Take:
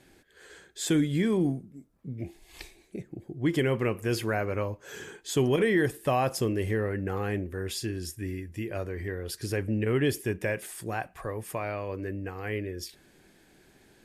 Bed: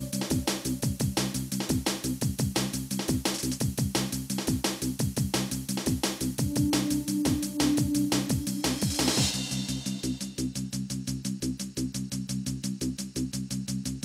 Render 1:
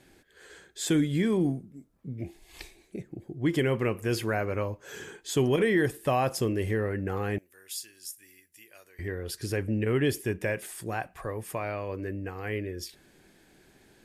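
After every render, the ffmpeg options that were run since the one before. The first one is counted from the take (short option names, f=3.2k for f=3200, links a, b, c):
-filter_complex "[0:a]asettb=1/sr,asplit=3[a][b][c];[a]atrim=end=7.384[d];[b]atrim=start=7.38:end=8.99,asetpts=PTS-STARTPTS,afade=t=in:d=0.004:c=qsin,afade=t=out:st=1.606:d=0.004:c=qsin,aderivative[e];[c]atrim=start=8.986[f];[d][e]acrossfade=d=0.004:c1=hsin:c2=qsin[g];[g][f]acrossfade=d=0.004:c1=qsin:c2=hsin"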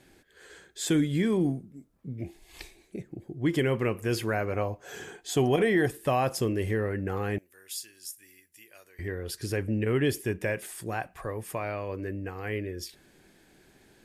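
-filter_complex "[0:a]asettb=1/sr,asplit=3[a][b][c];[a]atrim=end=4.534[d];[b]atrim=start=4.53:end=5.88,asetpts=PTS-STARTPTS,afade=t=in:d=0.004:c=qsin,afade=t=out:st=1.346:d=0.004:c=qsin,equalizer=f=720:w=6.9:g=13[e];[c]atrim=start=5.876[f];[d][e]acrossfade=d=0.004:c1=hsin:c2=qsin[g];[g][f]acrossfade=d=0.004:c1=qsin:c2=hsin"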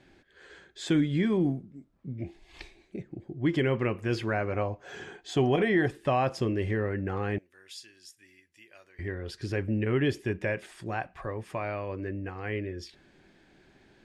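-af "lowpass=4.3k,bandreject=f=460:w=12"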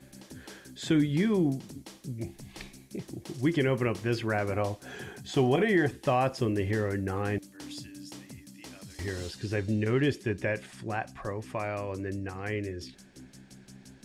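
-filter_complex "[1:a]volume=-19dB[a];[0:a][a]amix=inputs=2:normalize=0"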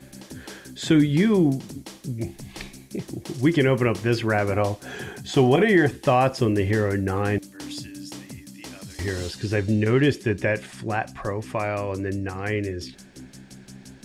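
-af "volume=7dB"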